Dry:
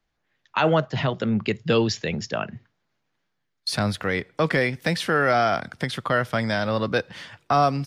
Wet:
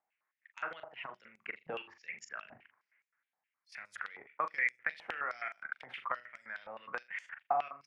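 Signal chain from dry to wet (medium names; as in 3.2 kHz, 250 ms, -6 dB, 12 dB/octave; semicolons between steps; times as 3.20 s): resonant high shelf 3 kHz -10 dB, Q 3; level held to a coarse grid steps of 20 dB; 2.48–3.77 s: transient shaper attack -10 dB, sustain +9 dB; compression 6:1, threshold -29 dBFS, peak gain reduction 12 dB; on a send: flutter echo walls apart 7 m, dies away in 0.29 s; on the sum: step-sequenced band-pass 9.6 Hz 800–7000 Hz; trim +5 dB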